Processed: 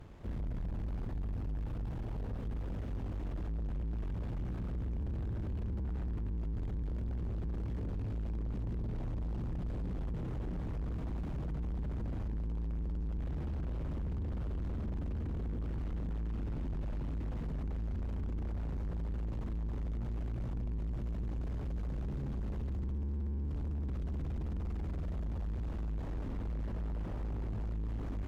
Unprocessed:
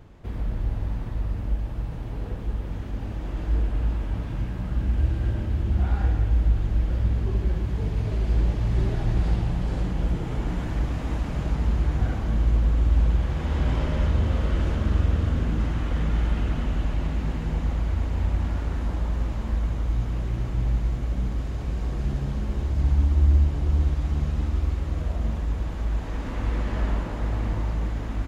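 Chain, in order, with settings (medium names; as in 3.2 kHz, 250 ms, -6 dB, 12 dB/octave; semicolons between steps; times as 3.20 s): valve stage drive 34 dB, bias 0.6; slew-rate limiter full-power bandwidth 3.9 Hz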